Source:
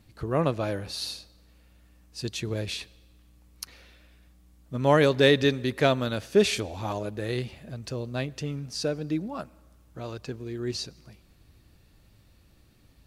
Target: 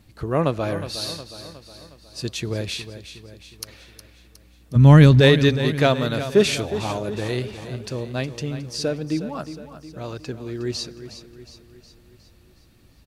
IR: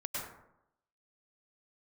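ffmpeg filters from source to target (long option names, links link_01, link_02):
-filter_complex "[0:a]asplit=3[link_01][link_02][link_03];[link_01]afade=type=out:start_time=4.75:duration=0.02[link_04];[link_02]asubboost=boost=11.5:cutoff=160,afade=type=in:start_time=4.75:duration=0.02,afade=type=out:start_time=5.19:duration=0.02[link_05];[link_03]afade=type=in:start_time=5.19:duration=0.02[link_06];[link_04][link_05][link_06]amix=inputs=3:normalize=0,aecho=1:1:363|726|1089|1452|1815|2178:0.251|0.133|0.0706|0.0374|0.0198|0.0105,volume=4dB"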